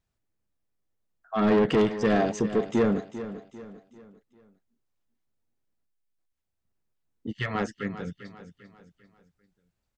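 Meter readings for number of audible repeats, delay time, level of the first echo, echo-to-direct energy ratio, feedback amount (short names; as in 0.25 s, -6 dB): 3, 0.396 s, -13.0 dB, -12.0 dB, 41%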